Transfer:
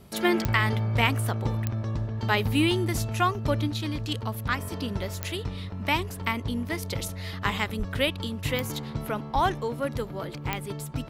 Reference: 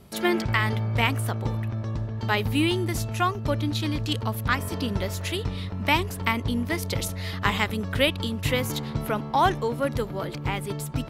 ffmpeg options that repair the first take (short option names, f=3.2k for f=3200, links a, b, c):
-filter_complex "[0:a]adeclick=t=4,asplit=3[a][b][c];[a]afade=t=out:st=7.78:d=0.02[d];[b]highpass=f=140:w=0.5412,highpass=f=140:w=1.3066,afade=t=in:st=7.78:d=0.02,afade=t=out:st=7.9:d=0.02[e];[c]afade=t=in:st=7.9:d=0.02[f];[d][e][f]amix=inputs=3:normalize=0,asplit=3[g][h][i];[g]afade=t=out:st=9.34:d=0.02[j];[h]highpass=f=140:w=0.5412,highpass=f=140:w=1.3066,afade=t=in:st=9.34:d=0.02,afade=t=out:st=9.46:d=0.02[k];[i]afade=t=in:st=9.46:d=0.02[l];[j][k][l]amix=inputs=3:normalize=0,asetnsamples=n=441:p=0,asendcmd='3.67 volume volume 3.5dB',volume=0dB"